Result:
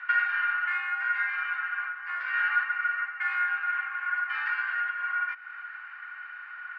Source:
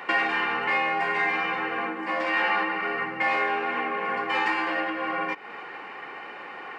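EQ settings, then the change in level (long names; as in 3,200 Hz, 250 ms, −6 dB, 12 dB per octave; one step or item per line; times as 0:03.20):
four-pole ladder high-pass 1,400 Hz, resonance 85%
low-pass filter 5,300 Hz 12 dB per octave
high-frequency loss of the air 65 metres
+1.0 dB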